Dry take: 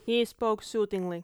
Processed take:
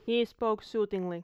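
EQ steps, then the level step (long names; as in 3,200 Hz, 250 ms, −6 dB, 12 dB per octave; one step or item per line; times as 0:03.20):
moving average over 5 samples
−1.5 dB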